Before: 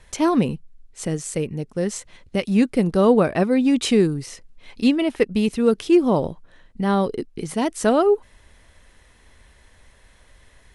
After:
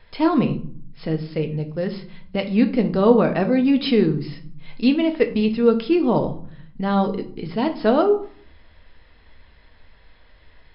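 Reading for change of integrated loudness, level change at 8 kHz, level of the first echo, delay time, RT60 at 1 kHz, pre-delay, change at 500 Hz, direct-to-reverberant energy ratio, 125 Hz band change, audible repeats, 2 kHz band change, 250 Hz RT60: 0.0 dB, under -40 dB, no echo, no echo, 0.55 s, 4 ms, 0.0 dB, 5.5 dB, +1.0 dB, no echo, -0.5 dB, 1.0 s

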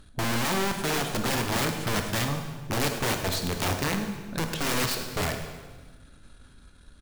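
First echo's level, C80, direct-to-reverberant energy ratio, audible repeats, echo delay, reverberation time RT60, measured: -14.5 dB, 7.5 dB, 4.5 dB, 5, 104 ms, 1.3 s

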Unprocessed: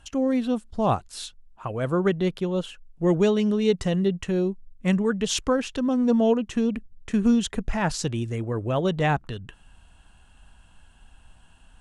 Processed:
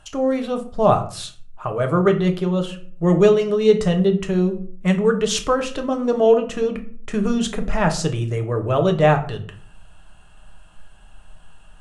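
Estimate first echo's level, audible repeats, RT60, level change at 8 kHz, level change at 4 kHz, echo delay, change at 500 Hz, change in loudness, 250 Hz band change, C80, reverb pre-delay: no echo, no echo, 0.45 s, +3.0 dB, +3.5 dB, no echo, +7.5 dB, +5.0 dB, +2.0 dB, 16.5 dB, 5 ms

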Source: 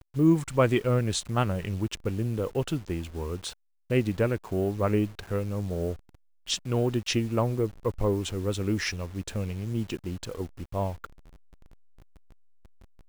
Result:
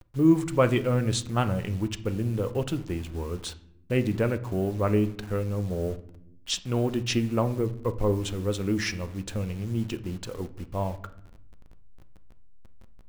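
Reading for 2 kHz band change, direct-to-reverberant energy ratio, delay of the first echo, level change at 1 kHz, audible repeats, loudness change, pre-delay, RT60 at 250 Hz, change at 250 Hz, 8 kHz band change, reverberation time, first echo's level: +0.5 dB, 10.0 dB, no echo, +0.5 dB, no echo, +1.0 dB, 4 ms, 1.3 s, +1.5 dB, 0.0 dB, 0.75 s, no echo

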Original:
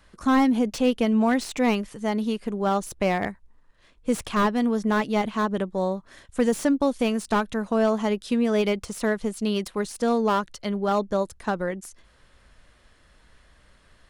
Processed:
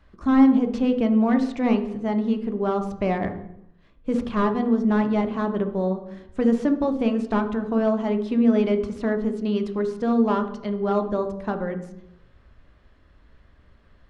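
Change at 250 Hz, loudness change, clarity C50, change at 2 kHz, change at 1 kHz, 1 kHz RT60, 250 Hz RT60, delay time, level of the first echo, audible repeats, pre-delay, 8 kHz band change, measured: +3.5 dB, +2.0 dB, 10.0 dB, -4.5 dB, -2.0 dB, 0.75 s, 0.95 s, no echo, no echo, no echo, 3 ms, under -15 dB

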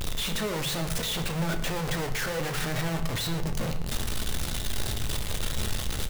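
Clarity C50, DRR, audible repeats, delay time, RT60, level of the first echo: 10.5 dB, 5.0 dB, 1, 114 ms, 0.50 s, -16.0 dB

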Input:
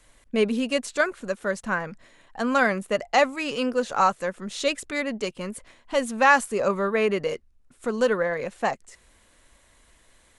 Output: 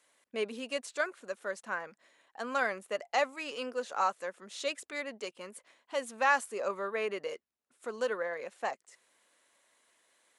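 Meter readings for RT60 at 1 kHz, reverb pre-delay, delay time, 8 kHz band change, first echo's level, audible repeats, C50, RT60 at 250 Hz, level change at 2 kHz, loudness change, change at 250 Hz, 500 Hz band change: no reverb, no reverb, no echo, -9.0 dB, no echo, no echo, no reverb, no reverb, -9.0 dB, -10.0 dB, -17.5 dB, -10.5 dB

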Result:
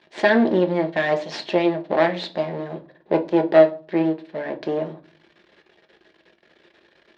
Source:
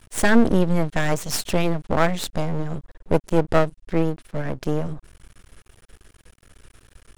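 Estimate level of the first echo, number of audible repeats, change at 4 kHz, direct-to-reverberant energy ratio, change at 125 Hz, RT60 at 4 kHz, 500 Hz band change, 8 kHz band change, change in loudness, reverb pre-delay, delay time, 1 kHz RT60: no echo, no echo, -0.5 dB, 5.0 dB, -8.0 dB, 0.30 s, +4.5 dB, under -15 dB, +2.0 dB, 5 ms, no echo, 0.40 s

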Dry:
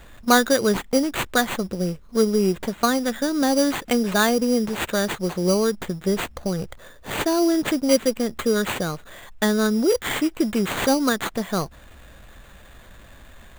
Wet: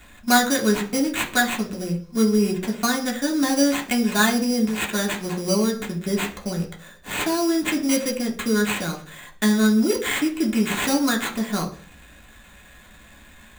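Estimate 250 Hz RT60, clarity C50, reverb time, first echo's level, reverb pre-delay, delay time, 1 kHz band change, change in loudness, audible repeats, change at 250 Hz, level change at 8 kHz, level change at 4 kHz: 0.55 s, 12.5 dB, 0.40 s, no echo, 3 ms, no echo, -1.0 dB, 0.0 dB, no echo, +1.0 dB, +2.0 dB, +1.0 dB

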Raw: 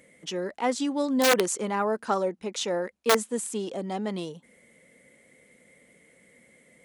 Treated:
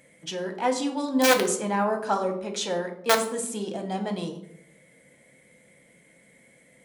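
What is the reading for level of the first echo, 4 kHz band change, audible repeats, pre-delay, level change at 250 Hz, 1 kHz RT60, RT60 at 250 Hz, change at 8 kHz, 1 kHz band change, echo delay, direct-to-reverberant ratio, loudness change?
no echo, +1.5 dB, no echo, 6 ms, +1.0 dB, 0.65 s, 0.95 s, +1.5 dB, +2.5 dB, no echo, 4.0 dB, +1.0 dB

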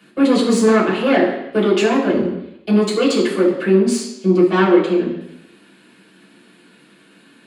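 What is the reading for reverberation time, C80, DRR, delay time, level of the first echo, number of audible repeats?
0.85 s, 8.5 dB, -7.0 dB, no echo, no echo, no echo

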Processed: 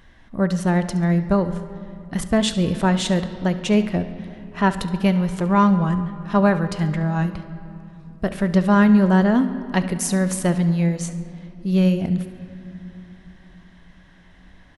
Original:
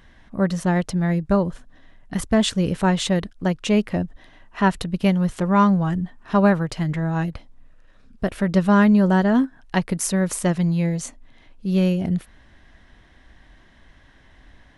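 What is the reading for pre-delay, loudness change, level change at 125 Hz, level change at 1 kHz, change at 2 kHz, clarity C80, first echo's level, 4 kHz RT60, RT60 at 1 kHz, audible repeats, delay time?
5 ms, +1.0 dB, +1.5 dB, +0.5 dB, +0.5 dB, 12.5 dB, -17.0 dB, 1.8 s, 2.9 s, 1, 70 ms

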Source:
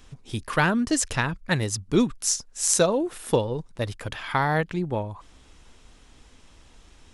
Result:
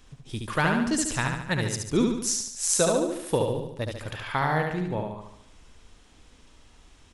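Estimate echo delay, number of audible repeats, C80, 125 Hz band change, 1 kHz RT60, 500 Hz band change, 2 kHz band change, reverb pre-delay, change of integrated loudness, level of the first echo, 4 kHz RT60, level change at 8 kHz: 72 ms, 6, no reverb, -1.5 dB, no reverb, -1.5 dB, -1.5 dB, no reverb, -1.5 dB, -4.0 dB, no reverb, -1.5 dB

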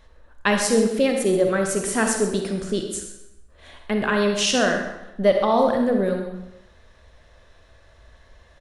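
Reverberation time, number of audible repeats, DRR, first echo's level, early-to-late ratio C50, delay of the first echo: 0.90 s, 1, 3.0 dB, -13.5 dB, 4.0 dB, 129 ms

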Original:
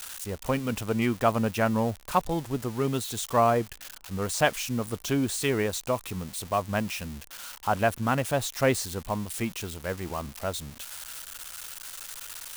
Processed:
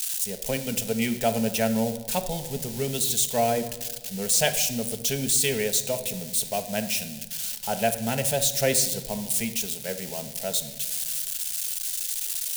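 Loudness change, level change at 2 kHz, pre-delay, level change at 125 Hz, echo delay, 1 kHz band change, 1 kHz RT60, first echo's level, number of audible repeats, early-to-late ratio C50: +3.5 dB, -0.5 dB, 5 ms, -2.5 dB, no echo, -3.5 dB, 1.2 s, no echo, no echo, 11.5 dB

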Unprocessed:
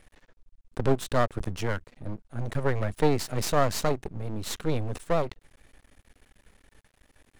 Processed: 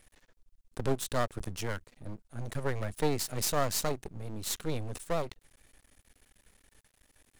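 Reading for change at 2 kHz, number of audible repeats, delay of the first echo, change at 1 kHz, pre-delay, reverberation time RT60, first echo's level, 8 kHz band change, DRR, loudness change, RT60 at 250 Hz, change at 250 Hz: -5.0 dB, no echo, no echo, -6.0 dB, no reverb, no reverb, no echo, +2.0 dB, no reverb, -5.0 dB, no reverb, -6.5 dB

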